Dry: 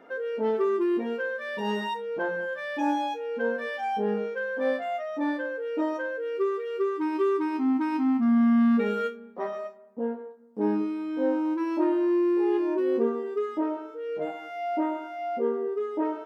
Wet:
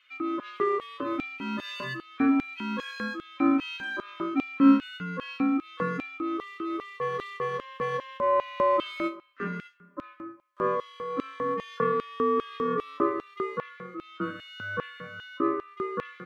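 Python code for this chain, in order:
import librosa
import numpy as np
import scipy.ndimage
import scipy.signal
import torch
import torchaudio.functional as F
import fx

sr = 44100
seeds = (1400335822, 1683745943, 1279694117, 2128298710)

y = x * np.sin(2.0 * np.pi * 800.0 * np.arange(len(x)) / sr)
y = fx.small_body(y, sr, hz=(260.0, 3200.0), ring_ms=90, db=15)
y = fx.filter_lfo_highpass(y, sr, shape='square', hz=2.5, low_hz=210.0, high_hz=3000.0, q=1.9)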